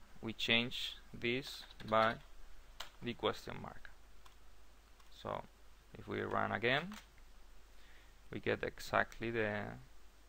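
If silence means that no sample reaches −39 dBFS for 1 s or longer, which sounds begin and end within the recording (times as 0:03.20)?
0:05.25–0:06.98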